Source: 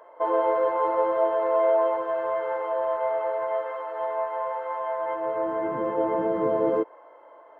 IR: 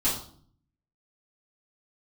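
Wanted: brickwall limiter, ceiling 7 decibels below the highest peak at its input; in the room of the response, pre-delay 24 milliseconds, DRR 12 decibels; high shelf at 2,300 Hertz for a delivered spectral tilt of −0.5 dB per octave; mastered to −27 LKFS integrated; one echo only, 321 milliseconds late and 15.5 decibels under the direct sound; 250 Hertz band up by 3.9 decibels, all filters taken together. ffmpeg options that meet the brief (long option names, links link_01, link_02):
-filter_complex "[0:a]equalizer=frequency=250:width_type=o:gain=6,highshelf=frequency=2300:gain=8,alimiter=limit=-17dB:level=0:latency=1,aecho=1:1:321:0.168,asplit=2[link_01][link_02];[1:a]atrim=start_sample=2205,adelay=24[link_03];[link_02][link_03]afir=irnorm=-1:irlink=0,volume=-22dB[link_04];[link_01][link_04]amix=inputs=2:normalize=0,volume=-0.5dB"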